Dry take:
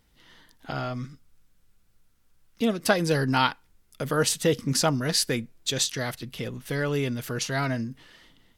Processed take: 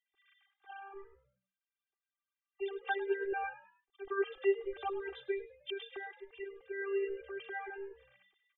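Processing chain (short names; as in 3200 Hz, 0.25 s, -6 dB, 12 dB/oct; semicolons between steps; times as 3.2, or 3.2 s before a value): sine-wave speech; robotiser 394 Hz; frequency-shifting echo 0.103 s, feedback 36%, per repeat +63 Hz, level -17 dB; gain -8.5 dB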